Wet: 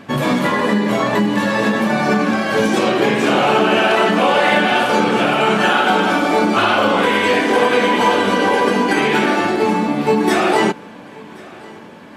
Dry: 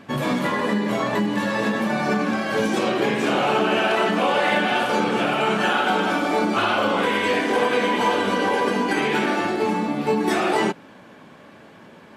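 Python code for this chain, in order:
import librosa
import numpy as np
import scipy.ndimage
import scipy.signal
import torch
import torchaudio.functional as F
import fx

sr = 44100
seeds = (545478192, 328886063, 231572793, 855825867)

y = fx.echo_feedback(x, sr, ms=1077, feedback_pct=53, wet_db=-24)
y = y * librosa.db_to_amplitude(6.0)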